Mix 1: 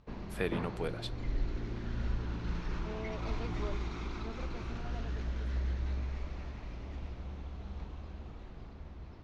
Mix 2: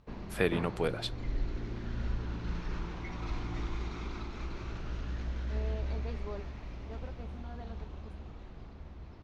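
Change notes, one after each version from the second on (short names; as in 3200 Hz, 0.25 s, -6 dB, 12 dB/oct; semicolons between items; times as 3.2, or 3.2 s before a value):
first voice +5.5 dB; second voice: entry +2.65 s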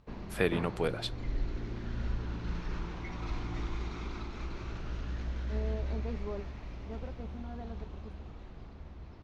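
second voice: add tilt -2.5 dB/oct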